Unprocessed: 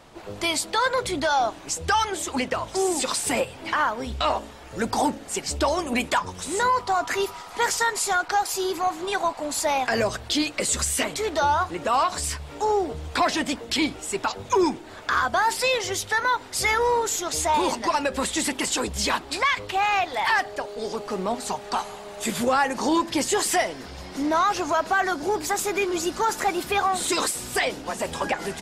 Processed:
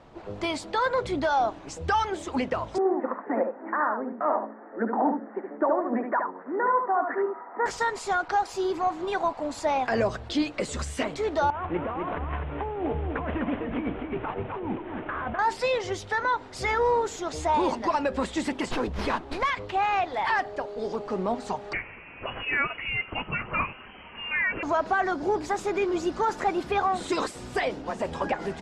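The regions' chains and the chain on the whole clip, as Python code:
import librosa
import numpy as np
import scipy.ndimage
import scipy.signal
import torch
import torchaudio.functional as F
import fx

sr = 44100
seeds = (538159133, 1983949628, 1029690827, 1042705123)

y = fx.chain(x, sr, fx.cheby1_bandpass(low_hz=210.0, high_hz=1900.0, order=5),
    fx.echo_single(ms=73, db=-5.5), at=(2.78, 7.66))
y = fx.chain(y, sr, fx.cvsd(bps=16000),
    fx.over_compress(threshold_db=-29.0, ratio=-1.0),
    fx.echo_single(ms=254, db=-5.5), at=(11.5, 15.39))
y = fx.chain(y, sr, fx.high_shelf(hz=9000.0, db=5.5),
    fx.running_max(window=5), at=(18.71, 19.5))
y = fx.chain(y, sr, fx.tilt_eq(slope=2.5),
    fx.freq_invert(carrier_hz=3100), at=(21.73, 24.63))
y = scipy.signal.sosfilt(scipy.signal.butter(2, 6500.0, 'lowpass', fs=sr, output='sos'), y)
y = fx.high_shelf(y, sr, hz=2000.0, db=-11.5)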